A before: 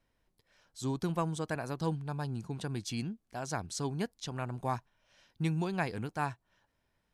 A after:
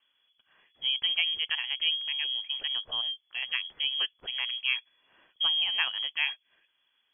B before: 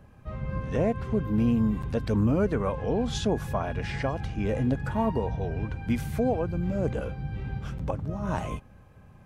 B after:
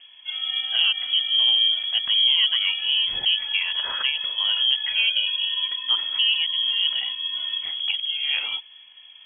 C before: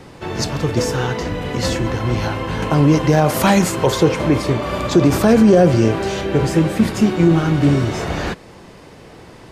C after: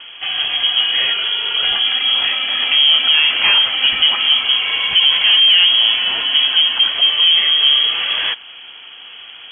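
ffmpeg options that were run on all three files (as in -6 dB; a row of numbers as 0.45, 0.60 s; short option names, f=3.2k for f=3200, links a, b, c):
-af "asoftclip=type=tanh:threshold=-12dB,lowpass=f=2.9k:t=q:w=0.5098,lowpass=f=2.9k:t=q:w=0.6013,lowpass=f=2.9k:t=q:w=0.9,lowpass=f=2.9k:t=q:w=2.563,afreqshift=-3400,volume=4.5dB"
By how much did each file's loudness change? +8.0, +8.5, +5.0 LU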